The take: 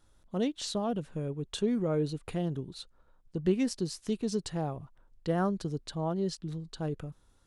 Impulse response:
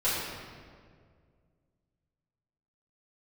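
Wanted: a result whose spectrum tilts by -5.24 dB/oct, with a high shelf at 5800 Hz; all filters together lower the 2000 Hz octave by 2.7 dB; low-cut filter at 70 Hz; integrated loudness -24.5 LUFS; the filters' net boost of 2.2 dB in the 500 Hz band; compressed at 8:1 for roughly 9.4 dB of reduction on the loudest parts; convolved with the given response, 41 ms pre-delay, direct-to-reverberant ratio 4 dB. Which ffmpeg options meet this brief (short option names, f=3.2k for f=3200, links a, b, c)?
-filter_complex "[0:a]highpass=70,equalizer=f=500:t=o:g=3,equalizer=f=2k:t=o:g=-4.5,highshelf=f=5.8k:g=4,acompressor=threshold=-31dB:ratio=8,asplit=2[a][b];[1:a]atrim=start_sample=2205,adelay=41[c];[b][c]afir=irnorm=-1:irlink=0,volume=-15dB[d];[a][d]amix=inputs=2:normalize=0,volume=11.5dB"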